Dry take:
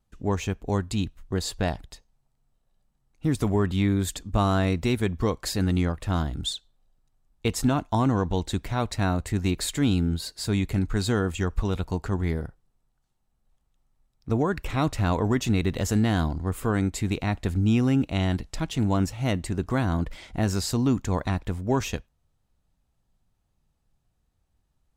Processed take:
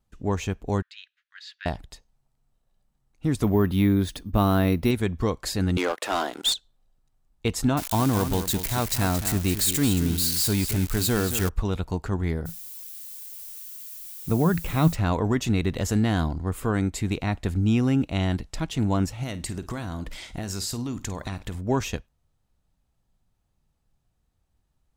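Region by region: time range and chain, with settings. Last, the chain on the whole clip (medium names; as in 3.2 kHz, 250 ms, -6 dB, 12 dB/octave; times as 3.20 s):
0.82–1.66 s: elliptic high-pass 1.6 kHz, stop band 70 dB + distance through air 260 m
3.43–4.91 s: peaking EQ 260 Hz +4 dB 1.6 oct + band-stop 7.3 kHz, Q 5.7 + careless resampling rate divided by 3×, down filtered, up hold
5.77–6.54 s: high-pass 380 Hz 24 dB/octave + waveshaping leveller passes 3
7.77–11.49 s: zero-crossing glitches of -19 dBFS + delay 224 ms -10 dB
12.45–14.94 s: peaking EQ 170 Hz +14 dB 0.29 oct + added noise violet -40 dBFS
19.23–21.55 s: treble shelf 2.6 kHz +9 dB + compression, threshold -27 dBFS + flutter echo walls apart 8.7 m, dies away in 0.21 s
whole clip: none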